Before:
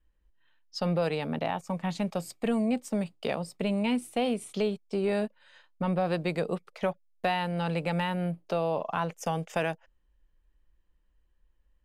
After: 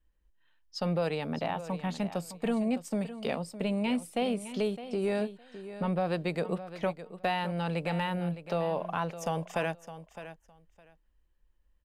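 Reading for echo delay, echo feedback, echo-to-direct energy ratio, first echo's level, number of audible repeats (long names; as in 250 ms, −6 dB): 611 ms, 17%, −13.0 dB, −13.0 dB, 2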